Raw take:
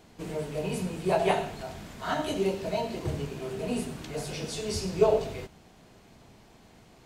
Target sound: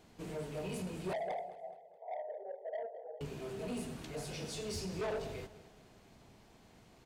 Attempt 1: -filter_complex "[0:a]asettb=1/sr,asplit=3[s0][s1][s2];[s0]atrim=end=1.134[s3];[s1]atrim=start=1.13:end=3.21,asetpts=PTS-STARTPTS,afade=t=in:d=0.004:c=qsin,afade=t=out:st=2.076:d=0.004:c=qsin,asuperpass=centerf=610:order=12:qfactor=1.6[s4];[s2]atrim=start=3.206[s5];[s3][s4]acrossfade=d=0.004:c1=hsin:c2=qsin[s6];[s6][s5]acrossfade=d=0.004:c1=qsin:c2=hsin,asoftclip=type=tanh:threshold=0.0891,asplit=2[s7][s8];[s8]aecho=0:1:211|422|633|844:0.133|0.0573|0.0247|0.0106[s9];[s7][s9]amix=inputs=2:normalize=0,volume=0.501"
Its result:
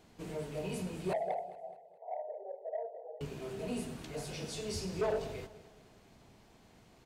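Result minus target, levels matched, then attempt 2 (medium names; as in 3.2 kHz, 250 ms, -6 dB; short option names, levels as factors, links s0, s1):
saturation: distortion -5 dB
-filter_complex "[0:a]asettb=1/sr,asplit=3[s0][s1][s2];[s0]atrim=end=1.134[s3];[s1]atrim=start=1.13:end=3.21,asetpts=PTS-STARTPTS,afade=t=in:d=0.004:c=qsin,afade=t=out:st=2.076:d=0.004:c=qsin,asuperpass=centerf=610:order=12:qfactor=1.6[s4];[s2]atrim=start=3.206[s5];[s3][s4]acrossfade=d=0.004:c1=hsin:c2=qsin[s6];[s6][s5]acrossfade=d=0.004:c1=qsin:c2=hsin,asoftclip=type=tanh:threshold=0.0398,asplit=2[s7][s8];[s8]aecho=0:1:211|422|633|844:0.133|0.0573|0.0247|0.0106[s9];[s7][s9]amix=inputs=2:normalize=0,volume=0.501"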